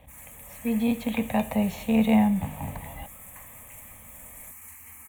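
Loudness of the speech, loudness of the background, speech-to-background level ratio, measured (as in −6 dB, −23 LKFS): −25.5 LKFS, −43.5 LKFS, 18.0 dB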